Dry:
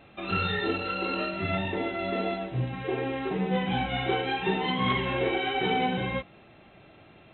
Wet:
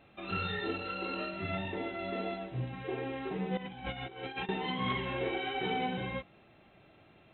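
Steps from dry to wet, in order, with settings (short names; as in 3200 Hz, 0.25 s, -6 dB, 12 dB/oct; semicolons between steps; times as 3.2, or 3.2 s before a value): 3.57–4.49 negative-ratio compressor -33 dBFS, ratio -0.5; gain -7 dB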